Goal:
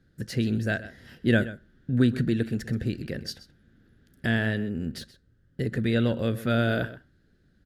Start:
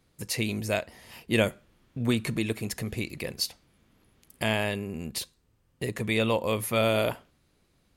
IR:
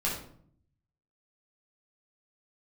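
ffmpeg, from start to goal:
-filter_complex "[0:a]firequalizer=gain_entry='entry(230,0);entry(1000,-21);entry(1500,5);entry(2200,-17);entry(3300,-9);entry(7200,-17);entry(12000,-21)':delay=0.05:min_phase=1,asetrate=45864,aresample=44100,asplit=2[s0][s1];[s1]adelay=128.3,volume=0.178,highshelf=f=4000:g=-2.89[s2];[s0][s2]amix=inputs=2:normalize=0,volume=1.88"

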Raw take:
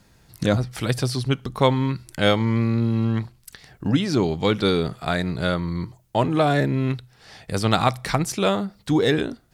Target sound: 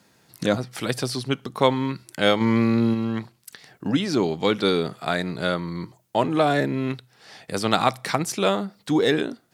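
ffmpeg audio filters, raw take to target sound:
-filter_complex "[0:a]highpass=190,asplit=3[s0][s1][s2];[s0]afade=t=out:st=2.4:d=0.02[s3];[s1]acontrast=28,afade=t=in:st=2.4:d=0.02,afade=t=out:st=2.93:d=0.02[s4];[s2]afade=t=in:st=2.93:d=0.02[s5];[s3][s4][s5]amix=inputs=3:normalize=0"

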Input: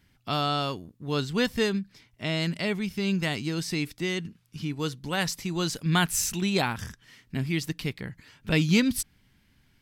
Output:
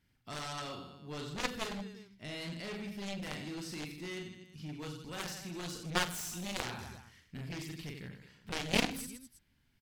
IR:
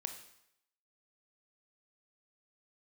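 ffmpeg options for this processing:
-af "aecho=1:1:40|92|159.6|247.5|361.7:0.631|0.398|0.251|0.158|0.1,aeval=exprs='0.562*(cos(1*acos(clip(val(0)/0.562,-1,1)))-cos(1*PI/2))+0.0891*(cos(3*acos(clip(val(0)/0.562,-1,1)))-cos(3*PI/2))+0.0794*(cos(7*acos(clip(val(0)/0.562,-1,1)))-cos(7*PI/2))':c=same,volume=0.562"

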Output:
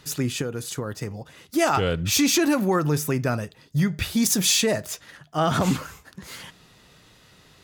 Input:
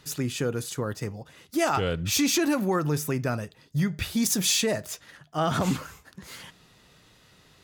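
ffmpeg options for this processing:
-filter_complex "[0:a]asettb=1/sr,asplit=3[s0][s1][s2];[s0]atrim=end=0.414[s3];[s1]atrim=start=0.41:end=1.11,asetpts=PTS-STARTPTS,afade=t=in:d=0.004:c=qsin,afade=t=out:st=0.696:d=0.004:c=qsin,acompressor=threshold=0.0355:ratio=6[s4];[s2]atrim=start=1.106[s5];[s3][s4]acrossfade=d=0.004:c1=hsin:c2=qsin[s6];[s6][s5]acrossfade=d=0.004:c1=qsin:c2=hsin,volume=1.5"

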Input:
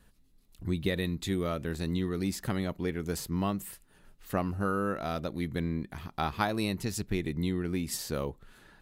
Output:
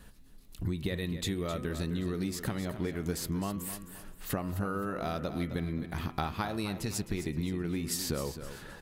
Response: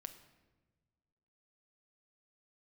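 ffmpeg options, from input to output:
-filter_complex "[0:a]bandreject=f=125.6:t=h:w=4,bandreject=f=251.2:t=h:w=4,bandreject=f=376.8:t=h:w=4,bandreject=f=502.4:t=h:w=4,bandreject=f=628:t=h:w=4,bandreject=f=753.6:t=h:w=4,bandreject=f=879.2:t=h:w=4,bandreject=f=1004.8:t=h:w=4,bandreject=f=1130.4:t=h:w=4,bandreject=f=1256:t=h:w=4,bandreject=f=1381.6:t=h:w=4,bandreject=f=1507.2:t=h:w=4,bandreject=f=1632.8:t=h:w=4,bandreject=f=1758.4:t=h:w=4,bandreject=f=1884:t=h:w=4,bandreject=f=2009.6:t=h:w=4,bandreject=f=2135.2:t=h:w=4,bandreject=f=2260.8:t=h:w=4,bandreject=f=2386.4:t=h:w=4,bandreject=f=2512:t=h:w=4,bandreject=f=2637.6:t=h:w=4,bandreject=f=2763.2:t=h:w=4,bandreject=f=2888.8:t=h:w=4,bandreject=f=3014.4:t=h:w=4,bandreject=f=3140:t=h:w=4,bandreject=f=3265.6:t=h:w=4,acompressor=threshold=0.0126:ratio=12,asplit=2[s0][s1];[s1]aecho=0:1:261|522|783|1044:0.282|0.101|0.0365|0.0131[s2];[s0][s2]amix=inputs=2:normalize=0,volume=2.66"

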